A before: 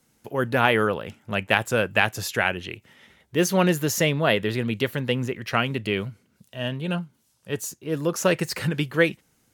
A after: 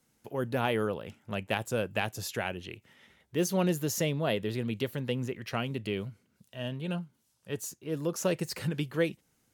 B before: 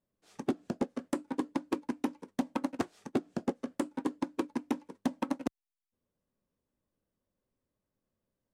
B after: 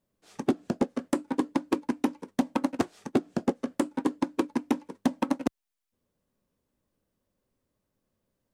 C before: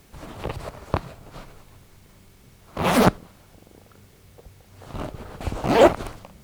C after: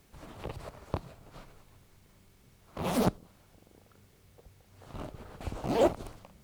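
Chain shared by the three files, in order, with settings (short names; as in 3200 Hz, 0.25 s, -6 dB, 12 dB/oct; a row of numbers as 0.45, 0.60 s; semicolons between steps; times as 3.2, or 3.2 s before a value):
dynamic EQ 1700 Hz, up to -8 dB, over -37 dBFS, Q 0.8; normalise peaks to -12 dBFS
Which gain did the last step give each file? -6.5, +6.0, -9.0 dB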